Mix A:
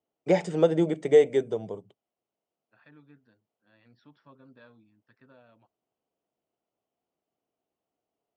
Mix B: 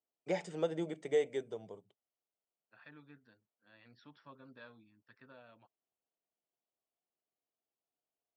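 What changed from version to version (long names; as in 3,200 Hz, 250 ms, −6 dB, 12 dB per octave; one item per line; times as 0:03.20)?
first voice −11.5 dB
master: add tilt shelving filter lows −3.5 dB, about 750 Hz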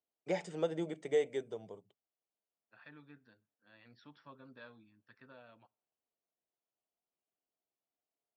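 reverb: on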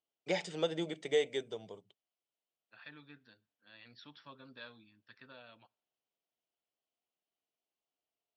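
master: add parametric band 3,800 Hz +11.5 dB 1.6 octaves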